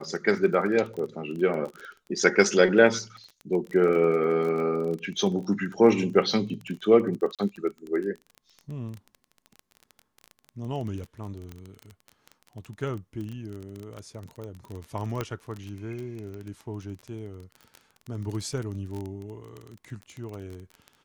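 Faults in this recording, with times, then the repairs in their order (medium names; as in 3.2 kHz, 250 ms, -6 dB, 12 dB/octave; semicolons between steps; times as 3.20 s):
crackle 23 per s -32 dBFS
7.35–7.39 s: dropout 37 ms
11.52 s: pop -26 dBFS
15.21 s: pop -15 dBFS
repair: de-click; interpolate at 7.35 s, 37 ms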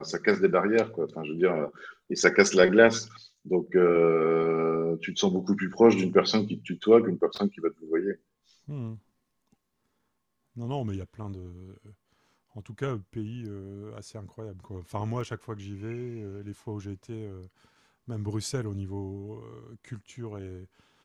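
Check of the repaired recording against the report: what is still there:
15.21 s: pop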